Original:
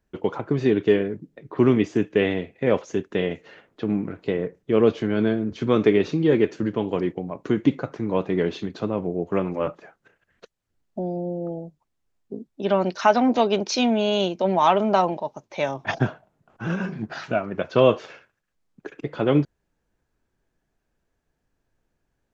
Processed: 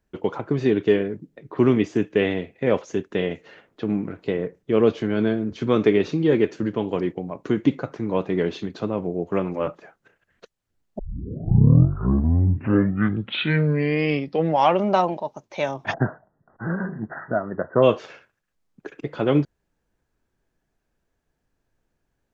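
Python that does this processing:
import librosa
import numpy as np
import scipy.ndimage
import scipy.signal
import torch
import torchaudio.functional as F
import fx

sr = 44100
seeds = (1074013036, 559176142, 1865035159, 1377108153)

y = fx.brickwall_lowpass(x, sr, high_hz=2000.0, at=(15.92, 17.82), fade=0.02)
y = fx.edit(y, sr, fx.tape_start(start_s=10.99, length_s=4.06), tone=tone)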